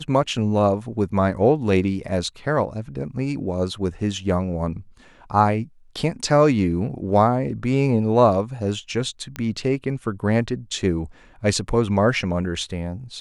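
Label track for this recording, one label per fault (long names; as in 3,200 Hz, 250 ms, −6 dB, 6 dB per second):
9.360000	9.360000	click −14 dBFS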